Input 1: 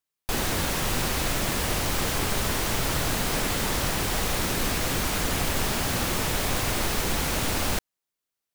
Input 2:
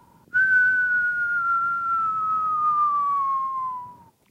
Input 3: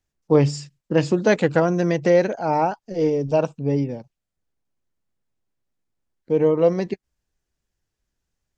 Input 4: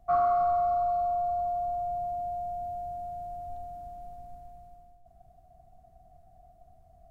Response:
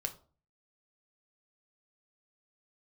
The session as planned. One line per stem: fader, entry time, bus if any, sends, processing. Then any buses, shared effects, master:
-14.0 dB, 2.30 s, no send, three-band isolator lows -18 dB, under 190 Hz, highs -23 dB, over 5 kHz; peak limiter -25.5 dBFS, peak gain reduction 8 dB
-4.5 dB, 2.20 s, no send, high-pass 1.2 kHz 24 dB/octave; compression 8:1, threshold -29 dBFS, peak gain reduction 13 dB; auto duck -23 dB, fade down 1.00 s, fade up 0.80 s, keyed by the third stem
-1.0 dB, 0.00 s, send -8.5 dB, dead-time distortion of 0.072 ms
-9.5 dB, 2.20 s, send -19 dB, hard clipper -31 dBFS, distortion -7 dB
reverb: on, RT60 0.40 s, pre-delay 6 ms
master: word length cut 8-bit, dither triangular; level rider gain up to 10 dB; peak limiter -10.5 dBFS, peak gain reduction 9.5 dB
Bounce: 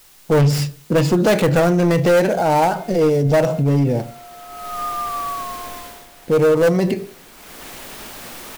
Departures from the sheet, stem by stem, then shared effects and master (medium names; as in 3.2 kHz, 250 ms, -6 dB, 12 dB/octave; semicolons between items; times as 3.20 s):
stem 3 -1.0 dB -> +10.5 dB; reverb return +8.0 dB